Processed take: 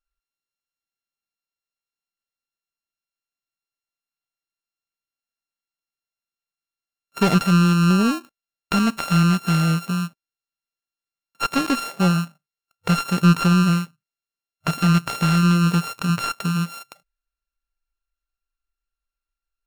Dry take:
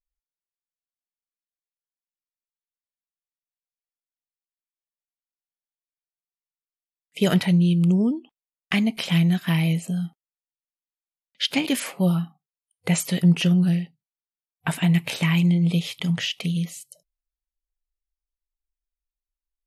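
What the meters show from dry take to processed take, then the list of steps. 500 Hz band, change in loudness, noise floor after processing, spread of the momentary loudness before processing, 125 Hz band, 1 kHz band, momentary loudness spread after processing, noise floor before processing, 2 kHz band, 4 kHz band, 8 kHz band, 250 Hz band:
+1.5 dB, +2.5 dB, under -85 dBFS, 11 LU, +2.0 dB, +13.0 dB, 11 LU, under -85 dBFS, +3.5 dB, -0.5 dB, +1.0 dB, +2.0 dB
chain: sorted samples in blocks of 32 samples; slew-rate limiter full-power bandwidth 460 Hz; trim +2.5 dB

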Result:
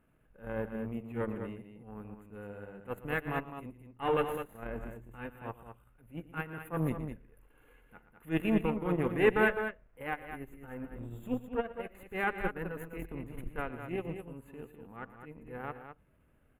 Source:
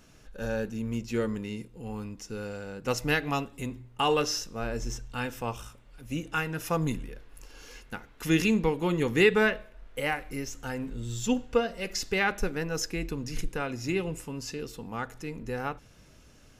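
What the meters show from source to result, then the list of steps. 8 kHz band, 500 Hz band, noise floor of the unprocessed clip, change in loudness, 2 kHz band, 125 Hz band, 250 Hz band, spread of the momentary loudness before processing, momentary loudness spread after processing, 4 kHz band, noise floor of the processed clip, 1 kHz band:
under -20 dB, -4.5 dB, -55 dBFS, -5.0 dB, -5.5 dB, -6.0 dB, -5.5 dB, 14 LU, 18 LU, -16.0 dB, -67 dBFS, -4.5 dB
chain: transient shaper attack -11 dB, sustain -7 dB; Chebyshev shaper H 6 -18 dB, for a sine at -12 dBFS; Butterworth band-stop 5.4 kHz, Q 0.57; on a send: loudspeakers at several distances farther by 40 m -12 dB, 71 m -6 dB; on the sum: upward expansion 1.5:1, over -41 dBFS

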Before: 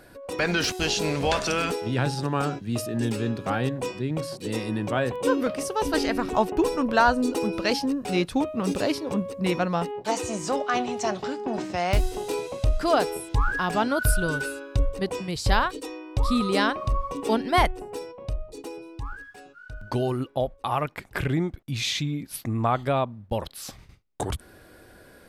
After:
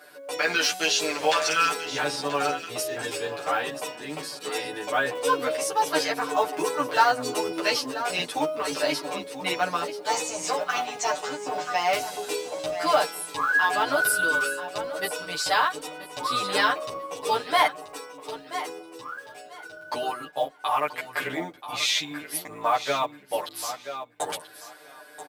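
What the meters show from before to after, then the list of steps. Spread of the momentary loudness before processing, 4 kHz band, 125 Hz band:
12 LU, +3.5 dB, -18.0 dB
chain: octave divider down 1 oct, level -2 dB; high-pass 610 Hz 12 dB/octave; comb 6.7 ms, depth 84%; in parallel at -2 dB: peak limiter -17 dBFS, peak gain reduction 9.5 dB; on the sum: short-mantissa float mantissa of 4-bit; on a send: feedback delay 983 ms, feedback 20%, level -12 dB; on the sum: endless flanger 11.7 ms -0.43 Hz

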